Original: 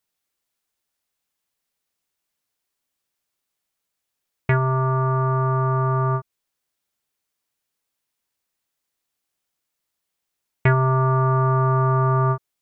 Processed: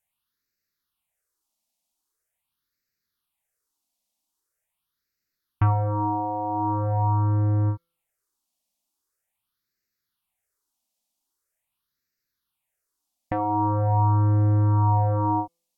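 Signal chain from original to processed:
all-pass phaser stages 6, 0.54 Hz, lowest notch 130–1,100 Hz
hum removal 210.9 Hz, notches 38
speed change −20%

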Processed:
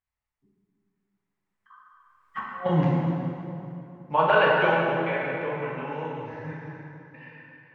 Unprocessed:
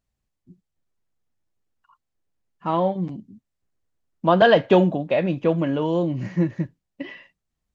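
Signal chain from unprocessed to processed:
source passing by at 0:02.54, 34 m/s, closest 2.9 metres
octave-band graphic EQ 250/1,000/2,000 Hz −6/+10/+11 dB
compressor whose output falls as the input rises −33 dBFS, ratio −0.5
dense smooth reverb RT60 2.9 s, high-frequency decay 0.7×, DRR −5 dB
level +5 dB

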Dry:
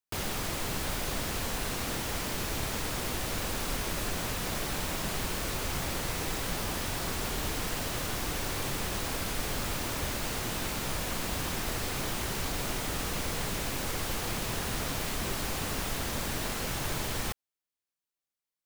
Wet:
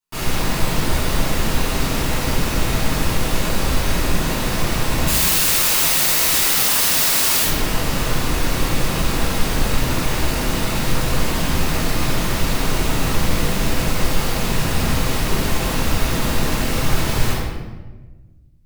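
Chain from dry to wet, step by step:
0:05.07–0:07.43: spectral tilt +4 dB per octave
rectangular room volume 860 cubic metres, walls mixed, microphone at 9.5 metres
level −4 dB

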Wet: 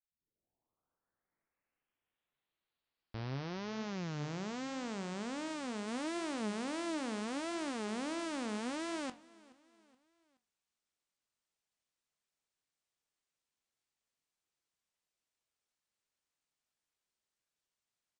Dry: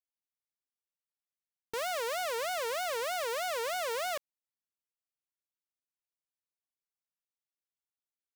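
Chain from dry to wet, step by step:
turntable start at the beginning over 2.70 s
brickwall limiter −37 dBFS, peak gain reduction 10 dB
flanger 1.7 Hz, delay 7.9 ms, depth 7.7 ms, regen +62%
pitch vibrato 3.6 Hz 12 cents
change of speed 0.459×
on a send: repeating echo 424 ms, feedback 45%, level −23 dB
on the sum: level +7.5 dB

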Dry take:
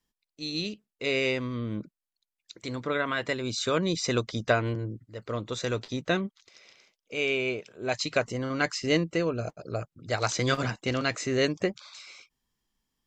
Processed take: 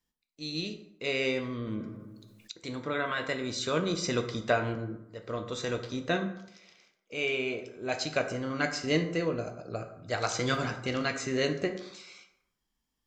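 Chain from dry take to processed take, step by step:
dense smooth reverb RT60 0.82 s, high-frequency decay 0.55×, DRR 5 dB
0:01.67–0:02.52: envelope flattener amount 50%
level −3.5 dB

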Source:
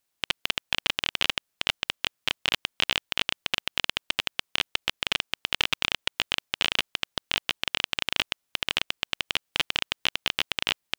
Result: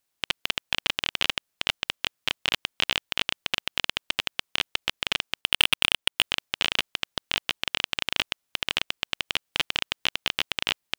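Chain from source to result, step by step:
0:05.41–0:06.24: leveller curve on the samples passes 3

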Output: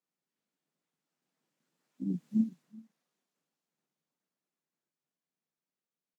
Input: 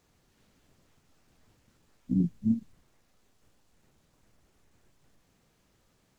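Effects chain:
source passing by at 0:02.34, 16 m/s, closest 2.2 metres
Chebyshev high-pass filter 150 Hz, order 5
low-shelf EQ 320 Hz −3 dB
single-tap delay 381 ms −23 dB
level +1.5 dB

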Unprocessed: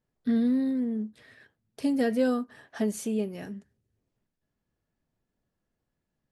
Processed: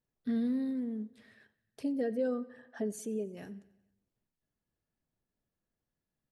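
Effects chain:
0:01.82–0:03.37: spectral envelope exaggerated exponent 1.5
repeating echo 91 ms, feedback 59%, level −21 dB
level −7 dB

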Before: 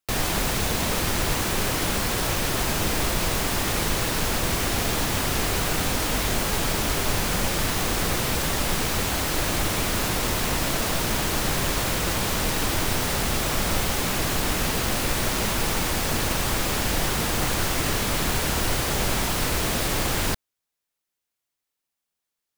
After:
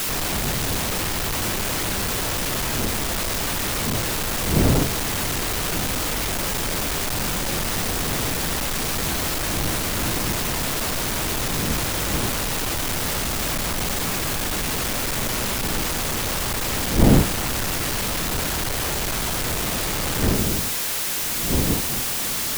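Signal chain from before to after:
sign of each sample alone
wind on the microphone 250 Hz −29 dBFS

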